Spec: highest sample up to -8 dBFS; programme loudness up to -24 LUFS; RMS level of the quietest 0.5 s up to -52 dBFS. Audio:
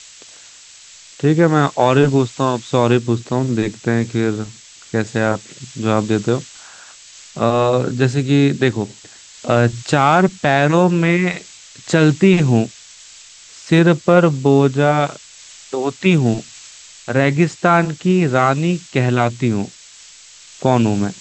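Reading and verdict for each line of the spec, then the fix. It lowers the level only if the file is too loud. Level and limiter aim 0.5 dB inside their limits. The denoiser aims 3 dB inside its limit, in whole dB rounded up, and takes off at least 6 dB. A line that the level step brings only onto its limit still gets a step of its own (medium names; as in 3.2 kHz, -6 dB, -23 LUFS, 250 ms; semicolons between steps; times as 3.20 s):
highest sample -1.5 dBFS: fail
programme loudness -16.5 LUFS: fail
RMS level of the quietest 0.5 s -42 dBFS: fail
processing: noise reduction 6 dB, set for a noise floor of -42 dBFS; trim -8 dB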